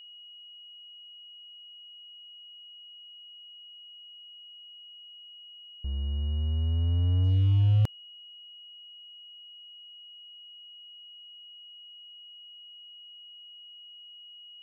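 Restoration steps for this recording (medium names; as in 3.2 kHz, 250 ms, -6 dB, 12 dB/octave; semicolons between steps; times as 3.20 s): clip repair -18 dBFS; band-stop 2.9 kHz, Q 30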